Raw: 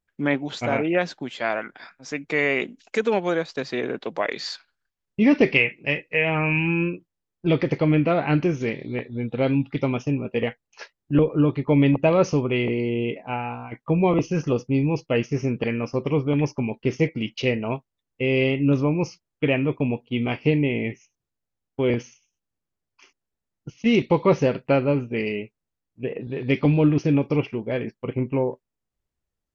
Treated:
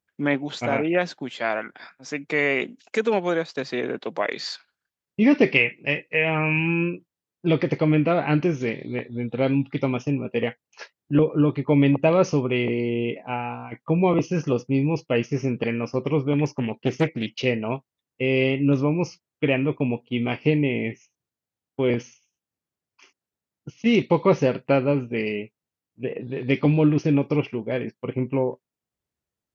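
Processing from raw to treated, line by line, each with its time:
16.45–17.28 s: loudspeaker Doppler distortion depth 0.46 ms
whole clip: high-pass 95 Hz

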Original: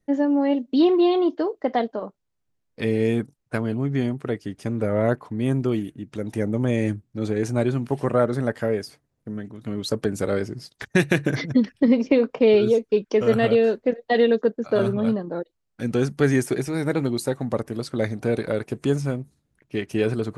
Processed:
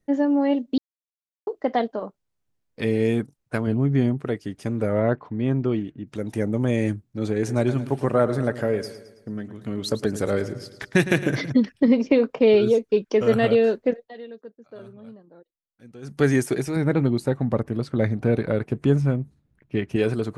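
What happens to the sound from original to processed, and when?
0.78–1.47 s: mute
3.67–4.25 s: tilt EQ -1.5 dB/octave
5.00–6.07 s: distance through air 180 m
7.36–11.50 s: feedback delay 109 ms, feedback 50%, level -13.5 dB
13.93–16.20 s: dip -21 dB, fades 0.18 s
16.76–19.96 s: tone controls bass +6 dB, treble -11 dB

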